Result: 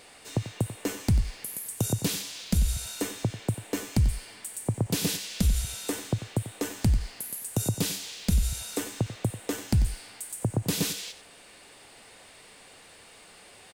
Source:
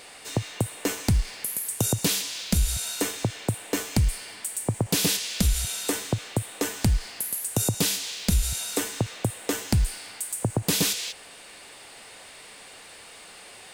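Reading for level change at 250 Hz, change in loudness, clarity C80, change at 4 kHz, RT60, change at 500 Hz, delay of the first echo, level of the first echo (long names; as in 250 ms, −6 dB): −1.5 dB, −3.5 dB, no reverb audible, −6.0 dB, no reverb audible, −3.5 dB, 92 ms, −13.0 dB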